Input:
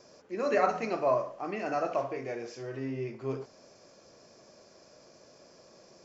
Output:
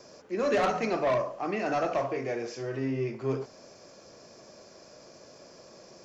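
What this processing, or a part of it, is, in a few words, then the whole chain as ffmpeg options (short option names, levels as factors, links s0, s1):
one-band saturation: -filter_complex "[0:a]acrossover=split=280|4300[s0][s1][s2];[s1]asoftclip=type=tanh:threshold=0.0422[s3];[s0][s3][s2]amix=inputs=3:normalize=0,volume=1.78"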